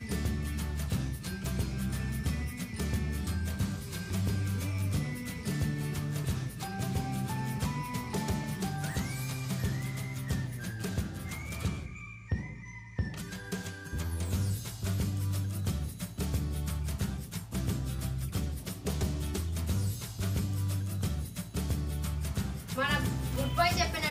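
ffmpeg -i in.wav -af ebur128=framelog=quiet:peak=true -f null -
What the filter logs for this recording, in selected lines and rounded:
Integrated loudness:
  I:         -34.2 LUFS
  Threshold: -44.2 LUFS
Loudness range:
  LRA:         3.3 LU
  Threshold: -54.6 LUFS
  LRA low:   -36.8 LUFS
  LRA high:  -33.5 LUFS
True peak:
  Peak:      -14.3 dBFS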